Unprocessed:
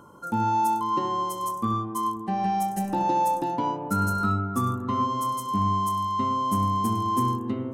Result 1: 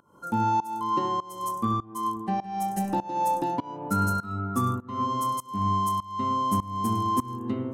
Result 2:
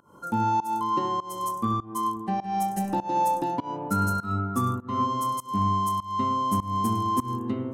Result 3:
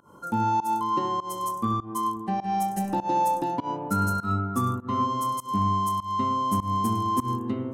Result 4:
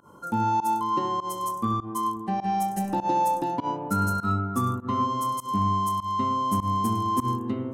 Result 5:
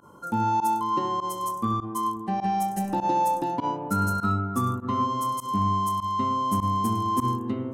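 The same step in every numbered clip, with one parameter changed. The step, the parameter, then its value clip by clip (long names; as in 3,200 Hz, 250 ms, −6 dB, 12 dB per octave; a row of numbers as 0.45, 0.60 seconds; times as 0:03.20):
fake sidechain pumping, release: 421, 242, 164, 110, 62 milliseconds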